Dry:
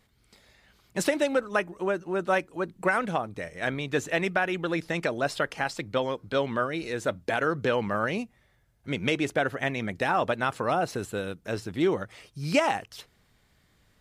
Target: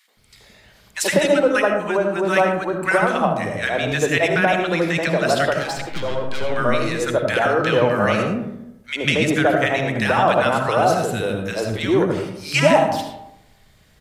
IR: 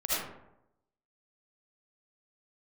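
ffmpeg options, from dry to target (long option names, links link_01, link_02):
-filter_complex "[0:a]asettb=1/sr,asplit=3[link_01][link_02][link_03];[link_01]atrim=end=5.484[link_04];[link_02]atrim=start=5.48:end=6.44,asetpts=PTS-STARTPTS,afade=type=in:duration=0.004:curve=qsin,afade=type=out:start_time=0.956:duration=0.004:curve=qsin,aeval=exprs='(tanh(28.2*val(0)+0.45)-tanh(0.45))/28.2':channel_layout=same[link_05];[link_03]atrim=start=6.436[link_06];[link_04][link_05]acrossfade=duration=0.004:curve1=hsin:curve2=qsin[link_07];[link_07][link_06]acrossfade=duration=0.004:curve1=qsin:curve2=hsin,acrossover=split=320|1300[link_08][link_09][link_10];[link_09]adelay=80[link_11];[link_08]adelay=170[link_12];[link_12][link_11][link_10]amix=inputs=3:normalize=0,asplit=2[link_13][link_14];[1:a]atrim=start_sample=2205[link_15];[link_14][link_15]afir=irnorm=-1:irlink=0,volume=-11dB[link_16];[link_13][link_16]amix=inputs=2:normalize=0,volume=8dB"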